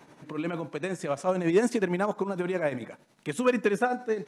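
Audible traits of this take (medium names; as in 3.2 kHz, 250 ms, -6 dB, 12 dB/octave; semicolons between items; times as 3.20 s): tremolo triangle 11 Hz, depth 65%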